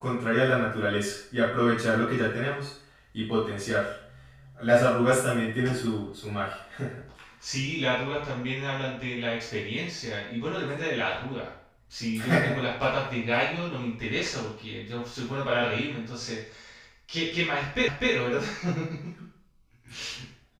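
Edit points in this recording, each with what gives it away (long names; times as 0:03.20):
0:17.88: the same again, the last 0.25 s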